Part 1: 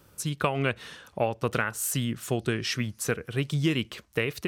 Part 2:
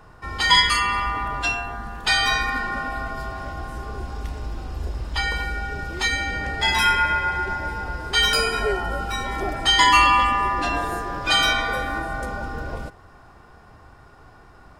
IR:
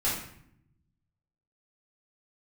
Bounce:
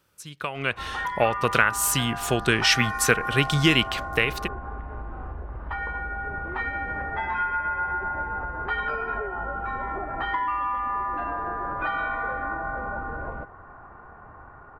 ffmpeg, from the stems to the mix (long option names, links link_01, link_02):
-filter_complex "[0:a]highshelf=frequency=3700:gain=-10,dynaudnorm=framelen=280:gausssize=5:maxgain=7.5dB,volume=-7dB[link_01];[1:a]lowpass=frequency=1400:width=0.5412,lowpass=frequency=1400:width=1.3066,acompressor=threshold=-30dB:ratio=12,adelay=550,volume=-5.5dB[link_02];[link_01][link_02]amix=inputs=2:normalize=0,tiltshelf=frequency=970:gain=-7,dynaudnorm=framelen=210:gausssize=7:maxgain=11dB"